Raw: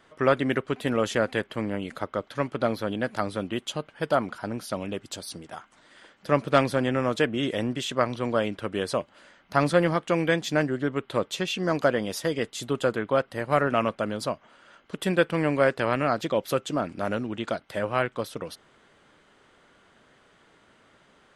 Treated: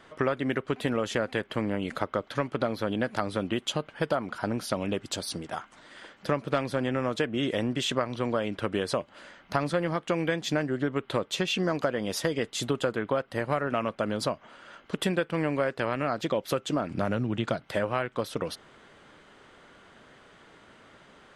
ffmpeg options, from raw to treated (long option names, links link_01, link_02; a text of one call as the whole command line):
ffmpeg -i in.wav -filter_complex "[0:a]asettb=1/sr,asplit=3[link_01][link_02][link_03];[link_01]atrim=end=16.904[link_04];[link_02]atrim=start=16.9:end=17.69,asetpts=PTS-STARTPTS,afade=type=in:duration=0.004:curve=qsin,afade=type=out:start_time=0.786:duration=0.004:curve=qsin,equalizer=frequency=130:width=1.5:gain=10[link_05];[link_03]atrim=start=17.686[link_06];[link_04][link_05]acrossfade=duration=0.004:curve1=hsin:curve2=qsin[link_07];[link_07][link_06]acrossfade=duration=0.004:curve1=qsin:curve2=hsin,highshelf=frequency=8500:gain=-6,acompressor=threshold=-29dB:ratio=6,volume=5dB" out.wav